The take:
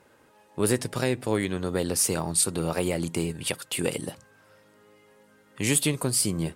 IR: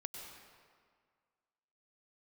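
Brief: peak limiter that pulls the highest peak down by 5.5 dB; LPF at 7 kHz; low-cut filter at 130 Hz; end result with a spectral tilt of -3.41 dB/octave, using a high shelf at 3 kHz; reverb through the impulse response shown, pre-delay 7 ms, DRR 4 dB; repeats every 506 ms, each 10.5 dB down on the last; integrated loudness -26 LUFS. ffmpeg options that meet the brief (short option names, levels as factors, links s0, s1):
-filter_complex "[0:a]highpass=130,lowpass=7000,highshelf=f=3000:g=6.5,alimiter=limit=0.188:level=0:latency=1,aecho=1:1:506|1012|1518:0.299|0.0896|0.0269,asplit=2[s0][s1];[1:a]atrim=start_sample=2205,adelay=7[s2];[s1][s2]afir=irnorm=-1:irlink=0,volume=0.794[s3];[s0][s3]amix=inputs=2:normalize=0"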